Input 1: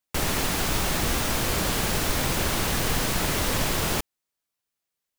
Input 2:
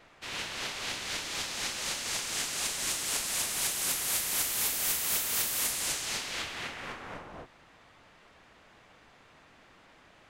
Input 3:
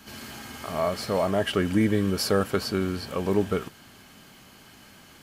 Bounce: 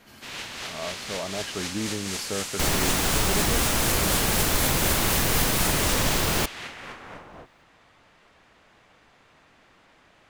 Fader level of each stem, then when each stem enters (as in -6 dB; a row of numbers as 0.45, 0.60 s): +1.5, +0.5, -9.0 dB; 2.45, 0.00, 0.00 s